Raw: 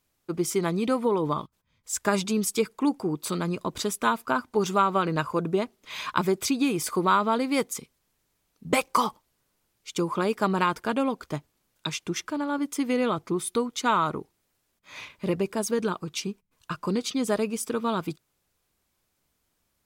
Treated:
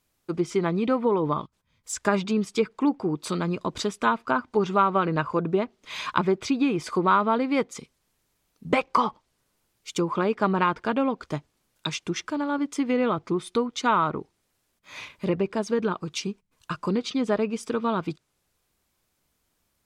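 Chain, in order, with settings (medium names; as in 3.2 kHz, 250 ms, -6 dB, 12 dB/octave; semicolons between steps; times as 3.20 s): low-pass that closes with the level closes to 2.8 kHz, closed at -22 dBFS; trim +1.5 dB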